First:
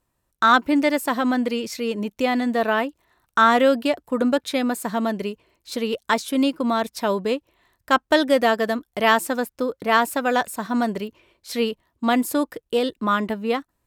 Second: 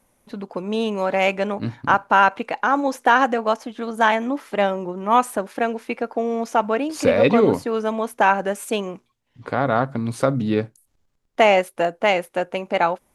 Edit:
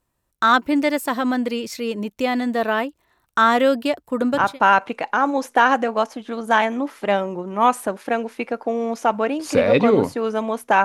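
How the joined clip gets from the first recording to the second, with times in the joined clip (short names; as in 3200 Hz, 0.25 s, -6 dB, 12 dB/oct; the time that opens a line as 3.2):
first
4.4 switch to second from 1.9 s, crossfade 0.40 s equal-power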